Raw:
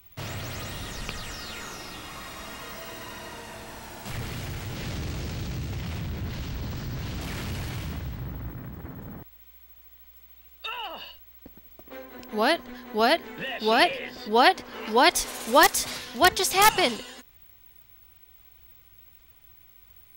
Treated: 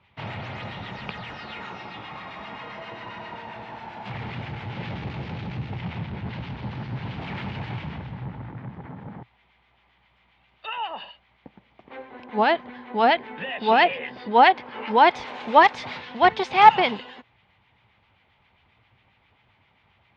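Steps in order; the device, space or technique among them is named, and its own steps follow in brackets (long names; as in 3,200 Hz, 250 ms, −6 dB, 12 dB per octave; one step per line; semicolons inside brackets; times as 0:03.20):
guitar amplifier with harmonic tremolo (two-band tremolo in antiphase 7.5 Hz, depth 50%, crossover 1,200 Hz; soft clipping −8 dBFS, distortion −23 dB; loudspeaker in its box 110–3,400 Hz, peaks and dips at 120 Hz +5 dB, 190 Hz +4 dB, 310 Hz −3 dB, 860 Hz +9 dB, 2,200 Hz +3 dB)
level +3 dB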